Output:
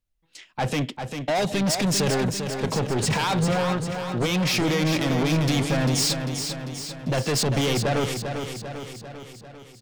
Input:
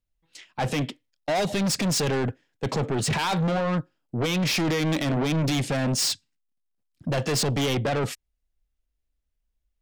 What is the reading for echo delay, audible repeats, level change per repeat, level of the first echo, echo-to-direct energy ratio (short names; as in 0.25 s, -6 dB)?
0.396 s, 6, -4.5 dB, -7.0 dB, -5.0 dB